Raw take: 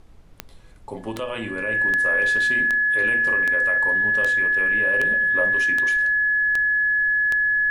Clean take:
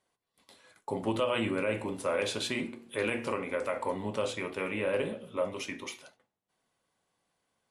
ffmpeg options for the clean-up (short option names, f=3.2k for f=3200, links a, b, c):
-af "adeclick=t=4,bandreject=f=1.7k:w=30,agate=range=-21dB:threshold=-34dB,asetnsamples=n=441:p=0,asendcmd='5.11 volume volume -4dB',volume=0dB"